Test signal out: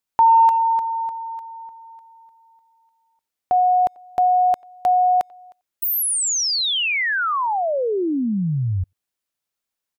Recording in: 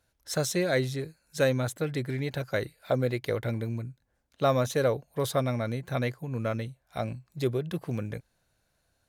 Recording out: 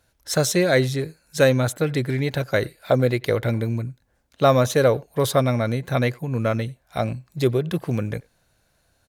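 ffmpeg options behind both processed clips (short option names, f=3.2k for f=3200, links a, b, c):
-filter_complex "[0:a]asplit=2[a][b];[b]adelay=90,highpass=300,lowpass=3.4k,asoftclip=type=hard:threshold=-21dB,volume=-26dB[c];[a][c]amix=inputs=2:normalize=0,volume=8dB"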